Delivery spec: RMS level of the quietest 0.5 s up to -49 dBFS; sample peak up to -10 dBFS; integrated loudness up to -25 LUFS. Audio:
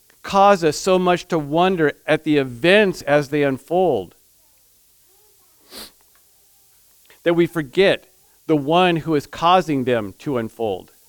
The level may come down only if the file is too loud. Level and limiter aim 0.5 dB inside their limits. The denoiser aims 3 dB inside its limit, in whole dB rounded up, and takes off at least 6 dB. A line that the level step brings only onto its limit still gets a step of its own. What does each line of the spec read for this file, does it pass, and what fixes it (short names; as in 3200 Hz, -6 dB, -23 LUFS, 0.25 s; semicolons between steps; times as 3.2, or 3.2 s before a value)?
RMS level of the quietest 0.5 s -56 dBFS: OK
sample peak -2.5 dBFS: fail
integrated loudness -18.5 LUFS: fail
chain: gain -7 dB; limiter -10.5 dBFS